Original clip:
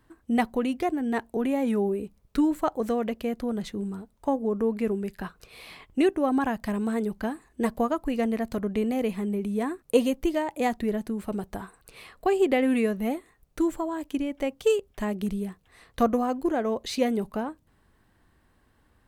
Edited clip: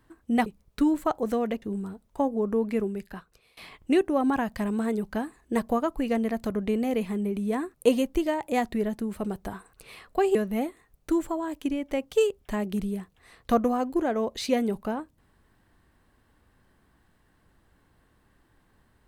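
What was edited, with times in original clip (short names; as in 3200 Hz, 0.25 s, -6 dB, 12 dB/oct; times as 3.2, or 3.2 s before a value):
0.46–2.03 cut
3.19–3.7 cut
4.85–5.65 fade out, to -23 dB
12.43–12.84 cut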